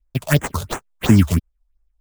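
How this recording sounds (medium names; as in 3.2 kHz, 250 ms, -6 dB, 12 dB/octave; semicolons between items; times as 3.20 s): aliases and images of a low sample rate 5.2 kHz, jitter 20%; phasing stages 4, 2.9 Hz, lowest notch 270–4100 Hz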